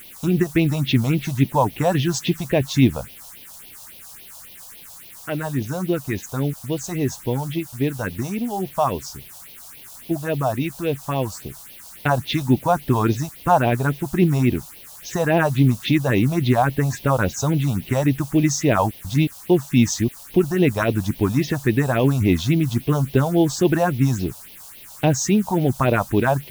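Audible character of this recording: a quantiser's noise floor 8-bit, dither triangular; phasing stages 4, 3.6 Hz, lowest notch 320–1400 Hz

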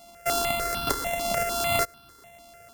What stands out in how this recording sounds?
a buzz of ramps at a fixed pitch in blocks of 64 samples; notches that jump at a steady rate 6.7 Hz 440–2000 Hz

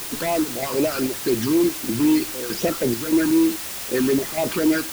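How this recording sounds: chopped level 1.6 Hz, depth 60%, duty 70%; phasing stages 12, 3.9 Hz, lowest notch 610–1600 Hz; a quantiser's noise floor 6-bit, dither triangular

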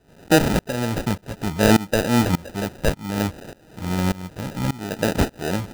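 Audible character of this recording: phasing stages 4, 0.61 Hz, lowest notch 390–3400 Hz; a quantiser's noise floor 8-bit, dither triangular; tremolo saw up 1.7 Hz, depth 95%; aliases and images of a low sample rate 1100 Hz, jitter 0%

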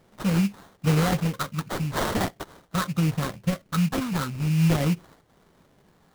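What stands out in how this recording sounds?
phasing stages 4, 0.43 Hz, lowest notch 650–2000 Hz; aliases and images of a low sample rate 2600 Hz, jitter 20%

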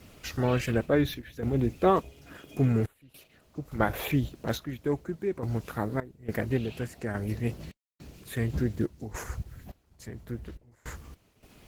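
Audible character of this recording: a quantiser's noise floor 10-bit, dither none; random-step tremolo, depth 100%; Opus

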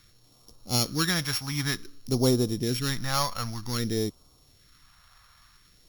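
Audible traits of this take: a buzz of ramps at a fixed pitch in blocks of 8 samples; phasing stages 2, 0.53 Hz, lowest notch 320–1700 Hz

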